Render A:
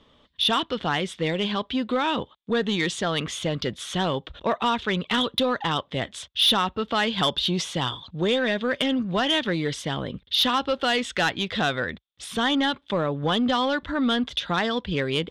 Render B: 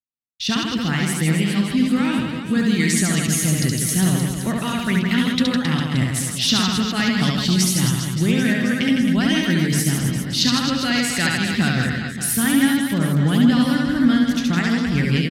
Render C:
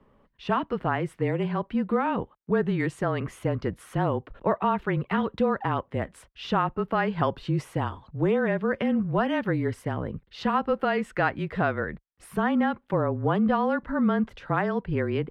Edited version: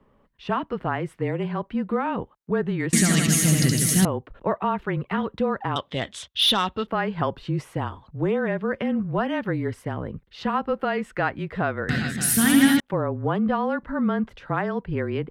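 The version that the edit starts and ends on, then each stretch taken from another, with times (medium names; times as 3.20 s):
C
2.93–4.05 s: from B
5.76–6.87 s: from A
11.89–12.80 s: from B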